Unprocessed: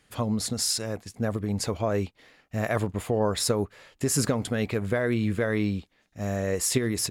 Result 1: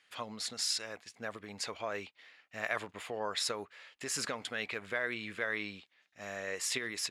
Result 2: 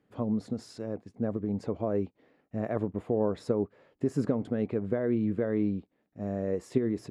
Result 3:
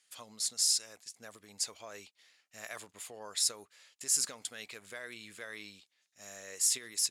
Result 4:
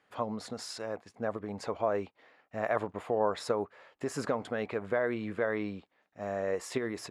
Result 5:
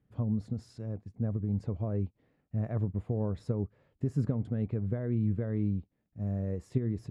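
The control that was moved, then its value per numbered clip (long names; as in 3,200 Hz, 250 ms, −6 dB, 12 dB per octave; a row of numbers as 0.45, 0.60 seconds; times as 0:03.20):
resonant band-pass, frequency: 2,500, 300, 7,200, 870, 110 Hertz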